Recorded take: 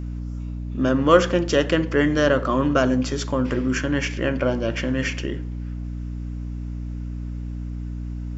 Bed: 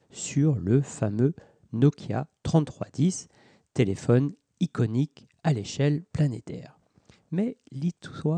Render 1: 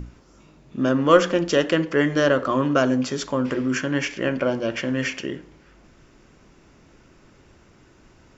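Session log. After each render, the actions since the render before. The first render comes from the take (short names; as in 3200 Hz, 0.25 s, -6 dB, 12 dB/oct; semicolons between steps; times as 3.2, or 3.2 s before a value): notches 60/120/180/240/300 Hz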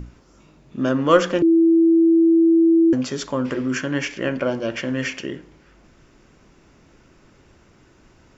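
1.42–2.93 bleep 330 Hz -11 dBFS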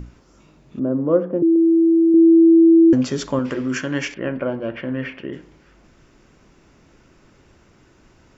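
0.79–1.56 Butterworth band-pass 260 Hz, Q 0.54; 2.14–3.39 low shelf 430 Hz +6 dB; 4.14–5.33 air absorption 460 m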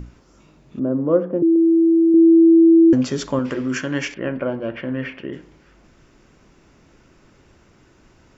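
nothing audible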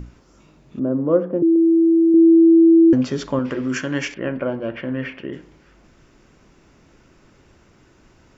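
2.35–3.63 air absorption 84 m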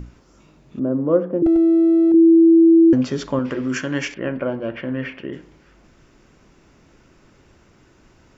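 1.46–2.12 minimum comb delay 6.2 ms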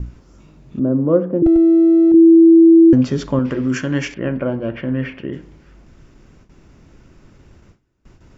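gate with hold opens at -43 dBFS; low shelf 220 Hz +10.5 dB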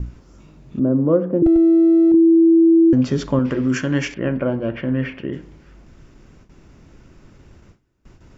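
compressor, threshold -10 dBFS, peak gain reduction 4.5 dB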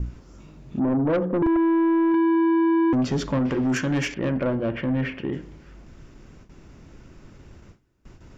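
soft clip -18 dBFS, distortion -10 dB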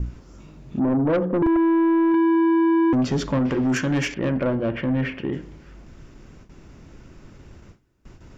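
gain +1.5 dB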